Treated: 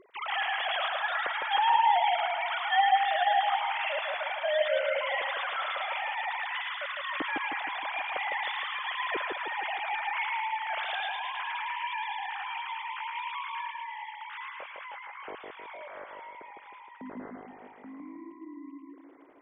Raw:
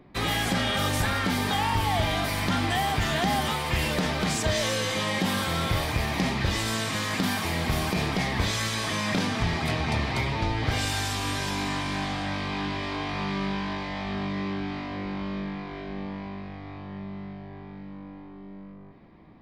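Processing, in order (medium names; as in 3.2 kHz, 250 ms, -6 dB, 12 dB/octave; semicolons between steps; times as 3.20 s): formants replaced by sine waves; 13.71–14.30 s: compression, threshold -34 dBFS, peak gain reduction 4.5 dB; two-band feedback delay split 1.1 kHz, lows 156 ms, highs 109 ms, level -3 dB; trim -6 dB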